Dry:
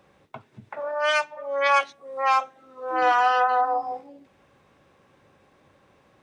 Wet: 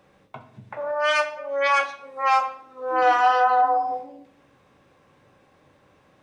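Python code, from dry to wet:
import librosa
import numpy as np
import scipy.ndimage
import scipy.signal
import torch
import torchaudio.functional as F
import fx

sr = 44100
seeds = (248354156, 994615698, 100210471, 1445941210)

y = fx.room_shoebox(x, sr, seeds[0], volume_m3=140.0, walls='mixed', distance_m=0.43)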